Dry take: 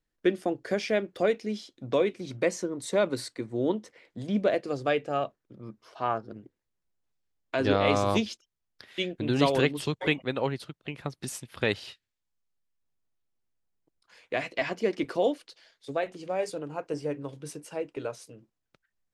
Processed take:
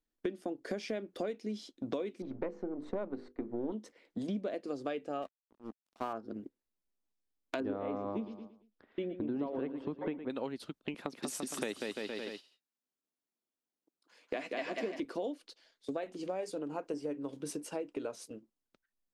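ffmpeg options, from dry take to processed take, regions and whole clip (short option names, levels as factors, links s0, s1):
-filter_complex "[0:a]asettb=1/sr,asplit=3[s0][s1][s2];[s0]atrim=end=2.224[s3];[s1]atrim=start=2.22:end=3.72,asetpts=PTS-STARTPTS,afade=t=in:d=0.004:c=qsin,afade=t=out:st=1.496:d=0.004:c=qsin,aeval=exprs='if(lt(val(0),0),0.447*val(0),val(0))':c=same,lowpass=1400,bandreject=f=50:t=h:w=6,bandreject=f=100:t=h:w=6,bandreject=f=150:t=h:w=6,bandreject=f=200:t=h:w=6,bandreject=f=250:t=h:w=6,bandreject=f=300:t=h:w=6,bandreject=f=350:t=h:w=6,bandreject=f=400:t=h:w=6,bandreject=f=450:t=h:w=6,bandreject=f=500:t=h:w=6[s4];[s2]atrim=start=3.716[s5];[s3][s4]acrossfade=d=0.004:c1=hsin:c2=qsin[s6];[s6][s5]acrossfade=d=0.004:c1=qsin:c2=hsin,asettb=1/sr,asplit=3[s7][s8][s9];[s7]atrim=end=5.224[s10];[s8]atrim=start=5.22:end=6.13,asetpts=PTS-STARTPTS,afade=t=in:d=0.004:c=qsin,afade=t=out:st=0.906:d=0.004:c=qsin,lowshelf=f=360:g=-2.5,aeval=exprs='sgn(val(0))*max(abs(val(0))-0.00562,0)':c=same[s11];[s9]atrim=start=6.126[s12];[s10][s11]acrossfade=d=0.004:c1=hsin:c2=qsin[s13];[s13][s12]acrossfade=d=0.004:c1=qsin:c2=hsin,asettb=1/sr,asplit=3[s14][s15][s16];[s14]atrim=end=7.604[s17];[s15]atrim=start=7.6:end=10.3,asetpts=PTS-STARTPTS,afade=t=in:d=0.004:c=qsin,afade=t=out:st=2.696:d=0.004:c=qsin,lowpass=1300,aecho=1:1:113|226|339|452:0.2|0.0758|0.0288|0.0109,atrim=end_sample=119070[s18];[s16]atrim=start=10.296[s19];[s17][s18]acrossfade=d=0.004:c1=hsin:c2=qsin[s20];[s20][s19]acrossfade=d=0.004:c1=qsin:c2=hsin,asettb=1/sr,asplit=3[s21][s22][s23];[s21]atrim=end=10.944[s24];[s22]atrim=start=10.94:end=15,asetpts=PTS-STARTPTS,afade=t=in:d=0.004:c=qsin,afade=t=out:st=4.056:d=0.004:c=qsin,highpass=200,aecho=1:1:190|342|463.6|560.9|638.7:0.631|0.398|0.251|0.158|0.1,atrim=end_sample=179046[s25];[s23]atrim=start=14.996[s26];[s24][s25]acrossfade=d=0.004:c1=hsin:c2=qsin[s27];[s27][s26]acrossfade=d=0.004:c1=qsin:c2=hsin,agate=range=0.398:threshold=0.00398:ratio=16:detection=peak,equalizer=f=125:t=o:w=1:g=-11,equalizer=f=250:t=o:w=1:g=8,equalizer=f=2000:t=o:w=1:g=-3,acompressor=threshold=0.0158:ratio=6,volume=1.19"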